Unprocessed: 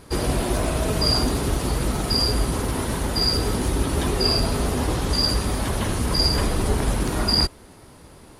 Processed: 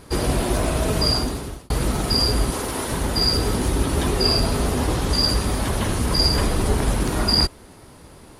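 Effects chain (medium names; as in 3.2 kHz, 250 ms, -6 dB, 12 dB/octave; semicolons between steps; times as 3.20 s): 1.00–1.70 s: fade out; 2.50–2.92 s: tone controls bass -9 dB, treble +2 dB; trim +1.5 dB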